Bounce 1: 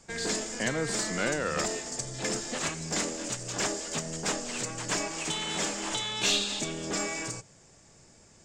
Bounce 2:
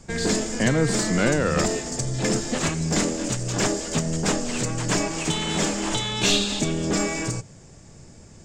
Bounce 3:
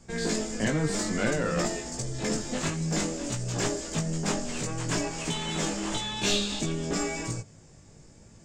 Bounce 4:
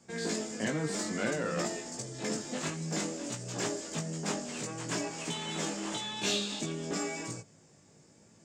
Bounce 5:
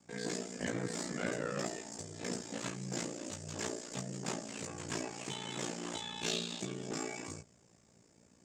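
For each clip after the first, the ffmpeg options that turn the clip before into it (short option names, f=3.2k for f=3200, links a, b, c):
-af "aeval=exprs='0.2*(cos(1*acos(clip(val(0)/0.2,-1,1)))-cos(1*PI/2))+0.00447*(cos(4*acos(clip(val(0)/0.2,-1,1)))-cos(4*PI/2))':c=same,lowshelf=f=340:g=11.5,volume=4.5dB"
-af "flanger=delay=17:depth=2.7:speed=0.57,volume=-3dB"
-af "highpass=160,volume=-4.5dB"
-af "aeval=exprs='val(0)*sin(2*PI*29*n/s)':c=same,volume=-2dB"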